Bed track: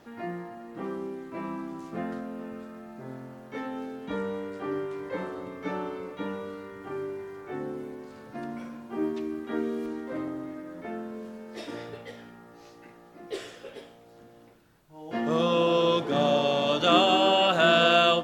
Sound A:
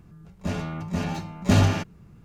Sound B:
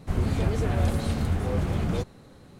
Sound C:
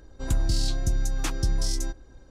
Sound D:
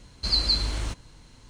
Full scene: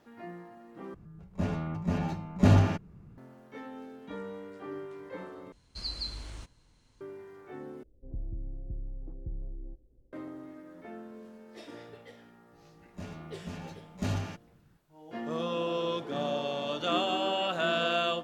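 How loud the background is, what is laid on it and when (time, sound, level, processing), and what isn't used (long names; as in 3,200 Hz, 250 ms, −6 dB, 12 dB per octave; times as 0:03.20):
bed track −8.5 dB
0:00.94: overwrite with A −2 dB + high-shelf EQ 2,200 Hz −10.5 dB
0:05.52: overwrite with D −13.5 dB
0:07.83: overwrite with C −13.5 dB + Chebyshev low-pass filter 500 Hz, order 3
0:12.53: mix in A −13.5 dB
not used: B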